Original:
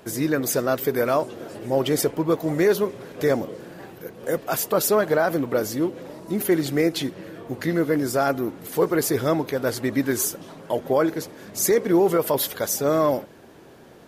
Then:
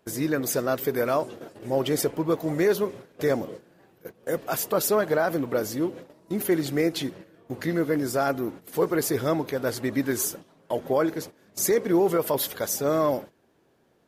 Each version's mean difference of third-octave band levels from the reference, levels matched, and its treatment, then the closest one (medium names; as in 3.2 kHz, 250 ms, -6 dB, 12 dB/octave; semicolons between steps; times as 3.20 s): 2.5 dB: gate -35 dBFS, range -14 dB; trim -3 dB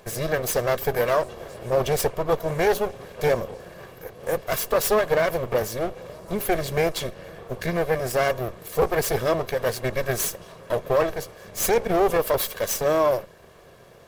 4.0 dB: comb filter that takes the minimum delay 1.8 ms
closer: first